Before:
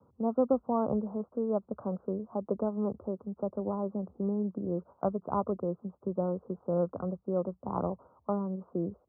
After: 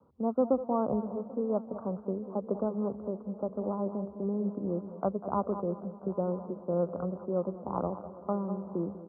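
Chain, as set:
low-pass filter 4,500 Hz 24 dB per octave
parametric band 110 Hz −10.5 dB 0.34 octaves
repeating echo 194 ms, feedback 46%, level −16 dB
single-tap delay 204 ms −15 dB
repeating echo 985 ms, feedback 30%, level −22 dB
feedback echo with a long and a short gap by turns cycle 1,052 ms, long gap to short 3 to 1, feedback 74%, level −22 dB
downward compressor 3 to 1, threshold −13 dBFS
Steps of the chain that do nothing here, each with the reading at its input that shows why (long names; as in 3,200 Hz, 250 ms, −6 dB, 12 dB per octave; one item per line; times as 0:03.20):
low-pass filter 4,500 Hz: nothing at its input above 1,300 Hz
downward compressor, threshold −13 dBFS: peak of its input −14.5 dBFS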